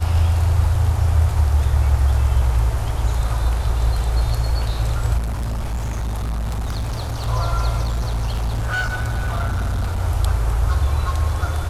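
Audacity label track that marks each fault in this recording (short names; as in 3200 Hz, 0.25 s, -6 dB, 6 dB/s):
5.170000	7.280000	clipped -20.5 dBFS
7.830000	10.010000	clipped -18 dBFS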